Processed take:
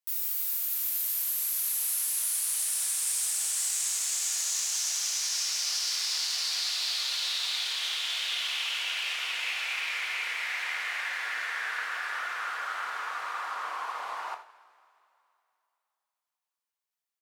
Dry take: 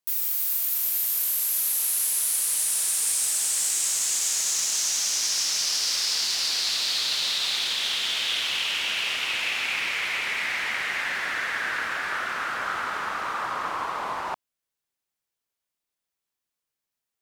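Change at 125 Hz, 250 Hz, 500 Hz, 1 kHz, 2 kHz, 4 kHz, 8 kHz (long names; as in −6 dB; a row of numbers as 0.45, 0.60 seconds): can't be measured, below −15 dB, −10.0 dB, −5.0 dB, −5.0 dB, −5.0 dB, −5.0 dB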